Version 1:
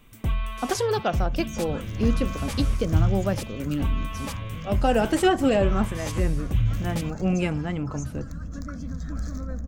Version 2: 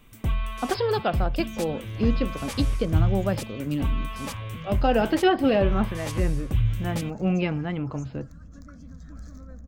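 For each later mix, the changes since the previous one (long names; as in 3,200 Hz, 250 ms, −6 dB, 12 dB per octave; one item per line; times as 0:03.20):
speech: add linear-phase brick-wall low-pass 5,300 Hz
second sound −10.5 dB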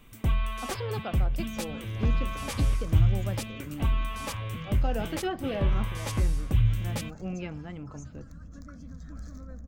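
speech −11.5 dB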